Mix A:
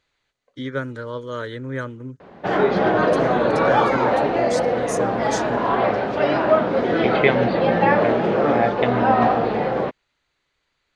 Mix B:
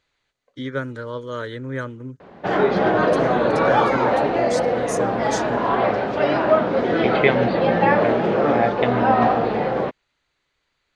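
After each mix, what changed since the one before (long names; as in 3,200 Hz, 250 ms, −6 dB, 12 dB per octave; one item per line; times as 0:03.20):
background: add low-pass filter 11,000 Hz 24 dB per octave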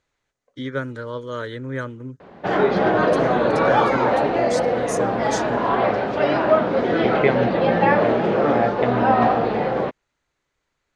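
second voice: add high-shelf EQ 2,300 Hz −11 dB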